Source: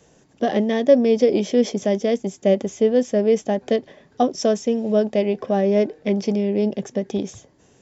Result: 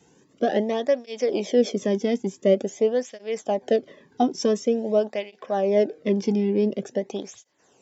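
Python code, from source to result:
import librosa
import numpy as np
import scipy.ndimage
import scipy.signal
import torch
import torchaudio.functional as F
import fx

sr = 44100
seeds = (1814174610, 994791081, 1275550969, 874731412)

y = fx.flanger_cancel(x, sr, hz=0.47, depth_ms=1.8)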